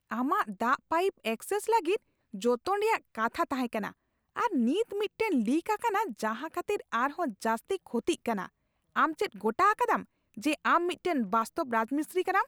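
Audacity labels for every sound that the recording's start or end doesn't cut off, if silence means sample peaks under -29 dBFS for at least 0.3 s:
2.430000	3.880000	sound
4.370000	8.450000	sound
8.960000	10.000000	sound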